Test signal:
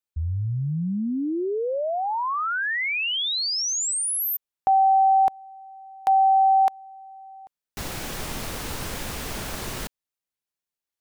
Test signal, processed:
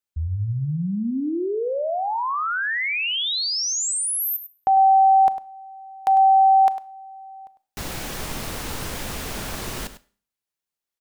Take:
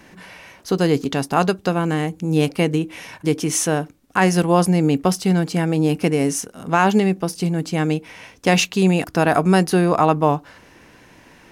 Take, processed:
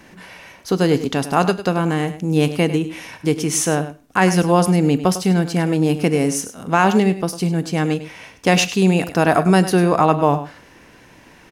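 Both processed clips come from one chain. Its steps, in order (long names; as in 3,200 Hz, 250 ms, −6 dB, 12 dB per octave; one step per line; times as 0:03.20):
on a send: single-tap delay 101 ms −13 dB
on the sum: four-comb reverb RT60 0.43 s, combs from 27 ms, DRR 17.5 dB
level +1 dB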